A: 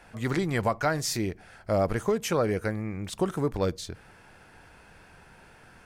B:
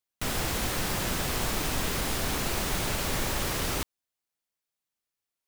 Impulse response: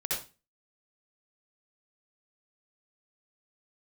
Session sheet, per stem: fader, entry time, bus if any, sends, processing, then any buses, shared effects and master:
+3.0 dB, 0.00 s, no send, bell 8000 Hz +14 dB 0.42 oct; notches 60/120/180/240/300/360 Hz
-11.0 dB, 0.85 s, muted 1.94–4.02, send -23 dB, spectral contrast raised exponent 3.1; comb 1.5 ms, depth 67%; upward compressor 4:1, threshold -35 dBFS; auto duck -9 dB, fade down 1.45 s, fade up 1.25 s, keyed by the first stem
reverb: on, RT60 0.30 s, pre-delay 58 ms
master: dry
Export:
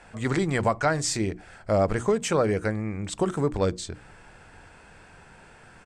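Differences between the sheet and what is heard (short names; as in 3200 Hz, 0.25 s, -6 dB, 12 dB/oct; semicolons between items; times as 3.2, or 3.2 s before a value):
stem B -11.0 dB -> -23.0 dB; master: extra air absorption 78 m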